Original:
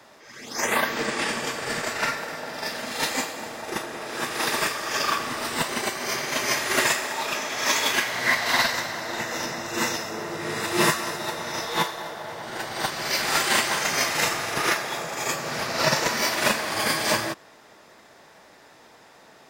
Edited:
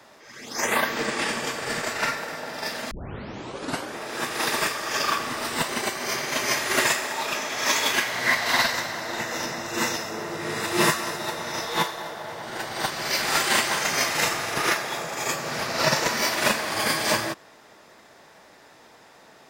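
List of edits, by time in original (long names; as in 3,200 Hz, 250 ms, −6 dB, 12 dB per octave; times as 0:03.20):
0:02.91: tape start 1.06 s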